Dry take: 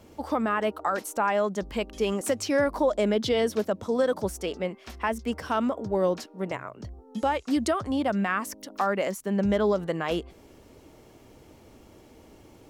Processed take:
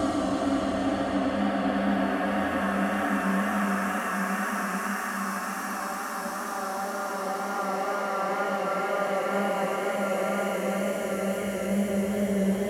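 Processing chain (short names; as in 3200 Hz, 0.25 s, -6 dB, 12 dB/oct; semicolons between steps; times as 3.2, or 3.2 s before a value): Paulstretch 8.8×, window 1.00 s, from 7.88; wow and flutter 30 cents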